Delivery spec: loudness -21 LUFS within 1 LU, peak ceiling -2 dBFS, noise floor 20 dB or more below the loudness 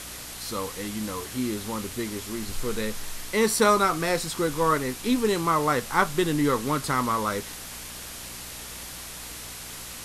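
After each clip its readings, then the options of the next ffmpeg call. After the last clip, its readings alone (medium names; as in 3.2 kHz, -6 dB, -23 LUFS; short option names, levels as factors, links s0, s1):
hum 60 Hz; highest harmonic 300 Hz; hum level -46 dBFS; noise floor -39 dBFS; noise floor target -47 dBFS; loudness -27.0 LUFS; peak level -6.5 dBFS; loudness target -21.0 LUFS
-> -af "bandreject=f=60:t=h:w=4,bandreject=f=120:t=h:w=4,bandreject=f=180:t=h:w=4,bandreject=f=240:t=h:w=4,bandreject=f=300:t=h:w=4"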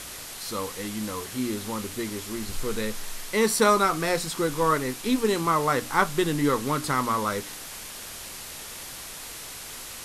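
hum not found; noise floor -40 dBFS; noise floor target -47 dBFS
-> -af "afftdn=nr=7:nf=-40"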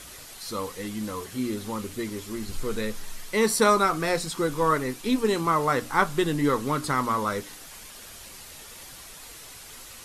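noise floor -45 dBFS; noise floor target -46 dBFS
-> -af "afftdn=nr=6:nf=-45"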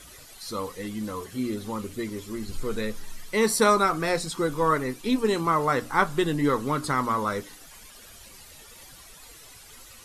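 noise floor -48 dBFS; loudness -26.0 LUFS; peak level -6.0 dBFS; loudness target -21.0 LUFS
-> -af "volume=1.78,alimiter=limit=0.794:level=0:latency=1"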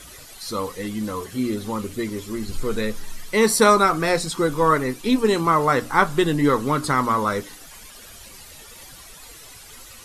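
loudness -21.0 LUFS; peak level -2.0 dBFS; noise floor -43 dBFS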